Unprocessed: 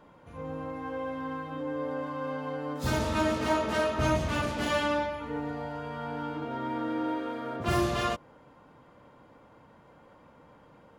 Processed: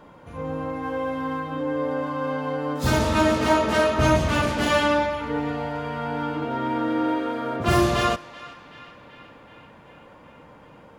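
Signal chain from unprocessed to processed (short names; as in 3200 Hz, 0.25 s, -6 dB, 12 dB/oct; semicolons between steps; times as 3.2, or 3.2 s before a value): 0.83–1.4 high shelf 8000 Hz +5 dB; on a send: narrowing echo 0.381 s, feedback 75%, band-pass 2200 Hz, level -16 dB; on the sum: gain +7.5 dB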